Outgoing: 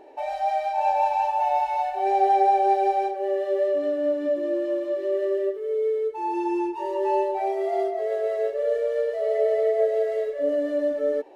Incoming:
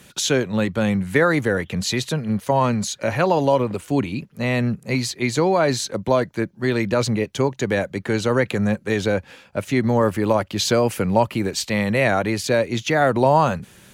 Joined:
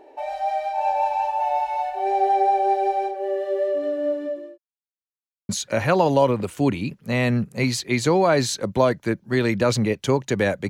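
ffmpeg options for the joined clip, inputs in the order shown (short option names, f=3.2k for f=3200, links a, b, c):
-filter_complex "[0:a]apad=whole_dur=10.69,atrim=end=10.69,asplit=2[a][b];[a]atrim=end=4.58,asetpts=PTS-STARTPTS,afade=t=out:st=4.13:d=0.45[c];[b]atrim=start=4.58:end=5.49,asetpts=PTS-STARTPTS,volume=0[d];[1:a]atrim=start=2.8:end=8,asetpts=PTS-STARTPTS,afade=t=in:d=0.004:c=hsin[e];[c][d][e]concat=n=3:v=0:a=1"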